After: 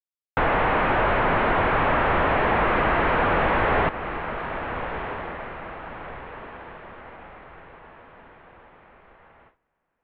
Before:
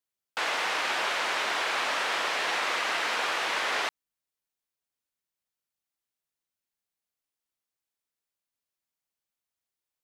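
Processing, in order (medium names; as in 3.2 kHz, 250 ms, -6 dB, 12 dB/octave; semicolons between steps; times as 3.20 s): waveshaping leveller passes 5; Bessel low-pass 1.7 kHz, order 8; tilt EQ -3 dB/octave; echo that smears into a reverb 1353 ms, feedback 43%, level -13 dB; in parallel at +0.5 dB: compression, threshold -28 dBFS, peak gain reduction 9.5 dB; on the sum: gate with hold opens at -42 dBFS; trim -2 dB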